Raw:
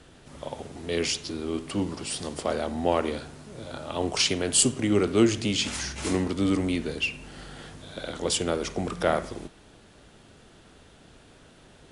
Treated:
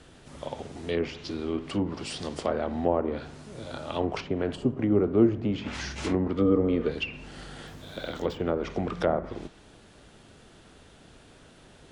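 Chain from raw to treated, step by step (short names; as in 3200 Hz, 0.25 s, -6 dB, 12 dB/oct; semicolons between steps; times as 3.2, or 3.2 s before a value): treble ducked by the level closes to 860 Hz, closed at -21 dBFS; 6.36–6.87 small resonant body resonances 480/1200/3200 Hz, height 11 dB -> 16 dB; 7.67–8.6 decimation joined by straight lines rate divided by 2×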